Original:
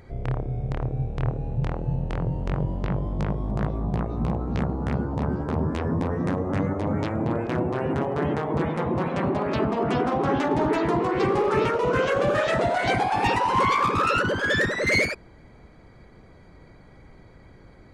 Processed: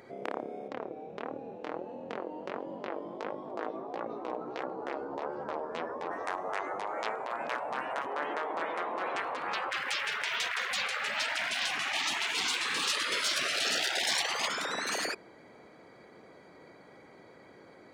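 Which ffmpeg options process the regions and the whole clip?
-filter_complex "[0:a]asettb=1/sr,asplit=3[a][b][c];[a]atrim=end=0.684[d];[b]atrim=start=0.68:end=6.11,asetpts=PTS-STARTPTS,afade=t=in:d=0.004:c=qsin,afade=t=out:st=5.426:d=0.004:c=qsin,lowpass=5.8k,flanger=delay=3.5:depth=3.1:regen=31:speed=1.5:shape=sinusoidal[e];[c]atrim=start=6.106[f];[d][e]acrossfade=d=0.004:c1=hsin:c2=qsin[g];[g][f]acrossfade=d=0.004:c1=qsin:c2=hsin,asettb=1/sr,asplit=3[h][i][j];[h]atrim=end=8.064[k];[i]atrim=start=8.06:end=9.15,asetpts=PTS-STARTPTS,afade=t=in:d=0.004:c=qsin,afade=t=out:st=1.086:d=0.004:c=qsin,highpass=660,highshelf=f=5.6k:g=-7.5[l];[j]atrim=start=9.146[m];[k][l]acrossfade=d=0.004:c1=hsin:c2=qsin[n];[n][m]acrossfade=d=0.004:c1=qsin:c2=hsin,asettb=1/sr,asplit=3[o][p][q];[o]atrim=end=9.714[r];[p]atrim=start=9.71:end=14.48,asetpts=PTS-STARTPTS,afade=t=in:d=0.004:c=qsin,afade=t=out:st=4.766:d=0.004:c=qsin,aphaser=in_gain=1:out_gain=1:delay=3.8:decay=0.36:speed=1.2:type=triangular,aeval=exprs='0.335*sin(PI/2*2*val(0)/0.335)':c=same[s];[q]atrim=start=14.476[t];[r][s]acrossfade=d=0.004:c1=hsin:c2=qsin[u];[u][t]acrossfade=d=0.004:c1=qsin:c2=hsin,afftfilt=real='re*lt(hypot(re,im),0.126)':imag='im*lt(hypot(re,im),0.126)':win_size=1024:overlap=0.75,highpass=290,equalizer=f=510:w=1.5:g=2"

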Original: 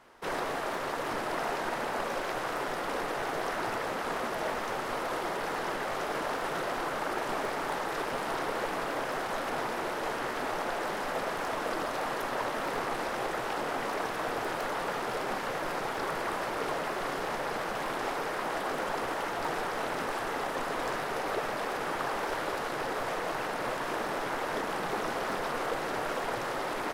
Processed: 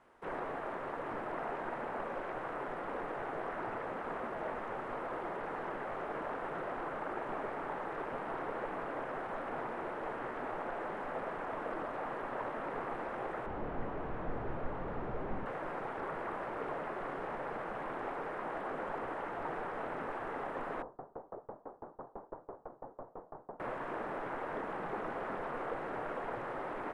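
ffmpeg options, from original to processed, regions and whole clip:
-filter_complex "[0:a]asettb=1/sr,asplit=3[a][b][c];[a]atrim=end=13.464[d];[b]atrim=start=13.46:end=15.46,asetpts=PTS-STARTPTS,afade=t=in:d=0.004:c=qsin,afade=t=out:st=1.996:d=0.004:c=qsin,lowpass=5k,asoftclip=type=hard:threshold=-33.5dB,aemphasis=mode=reproduction:type=riaa[e];[c]atrim=start=15.456[f];[d][e]acrossfade=d=0.004:c1=hsin:c2=qsin[g];[g][f]acrossfade=d=0.004:c1=qsin:c2=hsin,asettb=1/sr,asplit=3[h][i][j];[h]atrim=end=20.824[k];[i]atrim=start=20.82:end=23.6,asetpts=PTS-STARTPTS,afade=t=in:d=0.004:c=qsin,afade=t=out:st=2.776:d=0.004:c=qsin,lowpass=f=1k:w=0.5412,lowpass=f=1k:w=1.3066,aeval=exprs='val(0)*pow(10,-30*if(lt(mod(6*n/s,1),2*abs(6)/1000),1-mod(6*n/s,1)/(2*abs(6)/1000),(mod(6*n/s,1)-2*abs(6)/1000)/(1-2*abs(6)/1000))/20)':c=same[l];[j]atrim=start=23.596[m];[k][l]acrossfade=d=0.004:c1=hsin:c2=qsin[n];[n][m]acrossfade=d=0.004:c1=qsin:c2=hsin,acrossover=split=2900[o][p];[p]acompressor=threshold=-59dB:ratio=4:attack=1:release=60[q];[o][q]amix=inputs=2:normalize=0,lowpass=f=10k:w=0.5412,lowpass=f=10k:w=1.3066,equalizer=f=5k:w=0.78:g=-12,volume=-5.5dB"

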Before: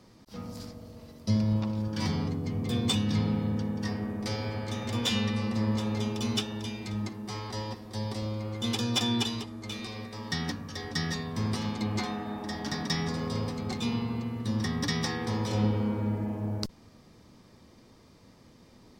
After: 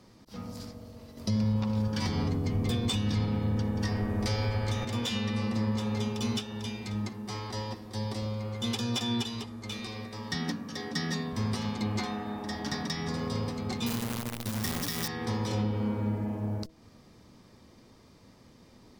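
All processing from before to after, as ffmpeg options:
-filter_complex "[0:a]asettb=1/sr,asplit=3[a][b][c];[a]atrim=end=1.174[d];[b]atrim=start=1.17:end=4.85,asetpts=PTS-STARTPTS,afade=t=in:d=0.004:c=qsin,afade=t=out:st=3.676:d=0.004:c=qsin,asubboost=boost=6.5:cutoff=73,acontrast=62[e];[c]atrim=start=4.846[f];[d][e]acrossfade=d=0.004:c1=hsin:c2=qsin[g];[g][f]acrossfade=d=0.004:c1=qsin:c2=hsin,asettb=1/sr,asplit=3[h][i][j];[h]atrim=end=10.354[k];[i]atrim=start=10.35:end=11.33,asetpts=PTS-STARTPTS,afade=t=in:d=0.004:c=qsin,afade=t=out:st=0.976:d=0.004:c=qsin,highpass=f=190:t=q:w=1.6,asoftclip=type=hard:threshold=-19dB[l];[j]atrim=start=11.326[m];[k][l]acrossfade=d=0.004:c1=hsin:c2=qsin[n];[n][m]acrossfade=d=0.004:c1=qsin:c2=hsin,asettb=1/sr,asplit=3[o][p][q];[o]atrim=end=13.864[r];[p]atrim=start=13.86:end=15.08,asetpts=PTS-STARTPTS,afade=t=in:d=0.004:c=qsin,afade=t=out:st=1.216:d=0.004:c=qsin,acrusher=bits=6:dc=4:mix=0:aa=0.000001,highshelf=f=7.3k:g=10[s];[q]atrim=start=15.076[t];[r][s]acrossfade=d=0.004:c1=hsin:c2=qsin[u];[u][t]acrossfade=d=0.004:c1=qsin:c2=hsin,alimiter=limit=-20.5dB:level=0:latency=1:release=235,bandreject=f=160.8:t=h:w=4,bandreject=f=321.6:t=h:w=4,bandreject=f=482.4:t=h:w=4,bandreject=f=643.2:t=h:w=4"

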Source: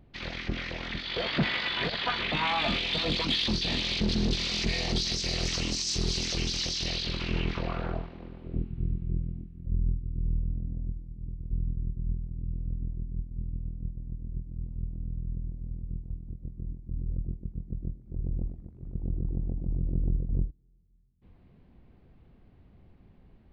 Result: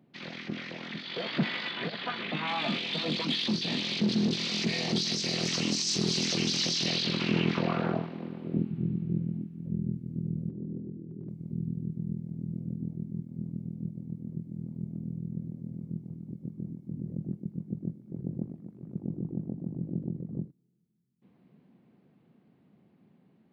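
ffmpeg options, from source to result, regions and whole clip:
-filter_complex "[0:a]asettb=1/sr,asplit=3[a][b][c];[a]atrim=end=1.714[d];[b]atrim=start=1.71:end=2.48,asetpts=PTS-STARTPTS,afade=t=in:d=0.004:c=qsin,afade=t=out:st=0.766:d=0.004:c=qsin,lowpass=f=3.6k:p=1,bandreject=f=940:w=13[e];[c]atrim=start=2.476[f];[d][e]acrossfade=d=0.004:c1=hsin:c2=qsin[g];[g][f]acrossfade=d=0.004:c1=qsin:c2=hsin,asettb=1/sr,asplit=3[h][i][j];[h]atrim=end=10.494[k];[i]atrim=start=10.49:end=11.29,asetpts=PTS-STARTPTS,afade=t=in:d=0.004:c=qsin,afade=t=out:st=0.796:d=0.004:c=qsin,lowpass=f=400:t=q:w=4.9,bandreject=f=50:t=h:w=6,bandreject=f=100:t=h:w=6,bandreject=f=150:t=h:w=6,bandreject=f=200:t=h:w=6,bandreject=f=250:t=h:w=6,bandreject=f=300:t=h:w=6,acompressor=threshold=-33dB:ratio=6:attack=3.2:release=140:knee=1:detection=peak[l];[j]atrim=start=11.286[m];[k][l]acrossfade=d=0.004:c1=hsin:c2=qsin[n];[n][m]acrossfade=d=0.004:c1=qsin:c2=hsin,highpass=f=150:w=0.5412,highpass=f=150:w=1.3066,equalizer=f=200:t=o:w=1.5:g=5.5,dynaudnorm=f=880:g=13:m=9.5dB,volume=-4.5dB"

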